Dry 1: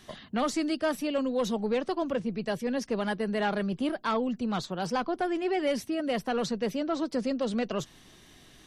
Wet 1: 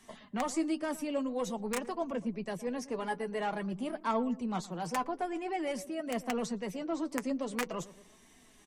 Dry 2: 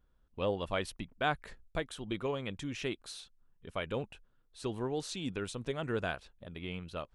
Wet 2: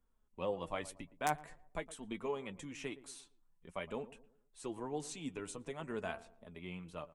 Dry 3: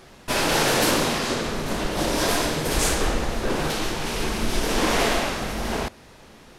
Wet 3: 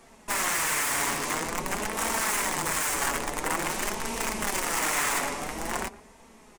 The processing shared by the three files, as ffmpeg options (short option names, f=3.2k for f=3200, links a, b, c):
-filter_complex "[0:a]acrossover=split=160[a][b];[a]alimiter=limit=-22.5dB:level=0:latency=1:release=419[c];[c][b]amix=inputs=2:normalize=0,equalizer=f=1.6k:t=o:w=1.4:g=-11.5,asplit=2[d][e];[e]adelay=12,volume=-13dB[f];[d][f]amix=inputs=2:normalize=0,aeval=exprs='(mod(10*val(0)+1,2)-1)/10':c=same,equalizer=f=125:t=o:w=1:g=-4,equalizer=f=250:t=o:w=1:g=3,equalizer=f=1k:t=o:w=1:g=9,equalizer=f=2k:t=o:w=1:g=11,equalizer=f=4k:t=o:w=1:g=-6,equalizer=f=8k:t=o:w=1:g=9,asplit=2[g][h];[h]adelay=115,lowpass=f=1k:p=1,volume=-16dB,asplit=2[i][j];[j]adelay=115,lowpass=f=1k:p=1,volume=0.42,asplit=2[k][l];[l]adelay=115,lowpass=f=1k:p=1,volume=0.42,asplit=2[m][n];[n]adelay=115,lowpass=f=1k:p=1,volume=0.42[o];[g][i][k][m][o]amix=inputs=5:normalize=0,flanger=delay=4.4:depth=2.7:regen=46:speed=0.48:shape=sinusoidal,volume=-3.5dB"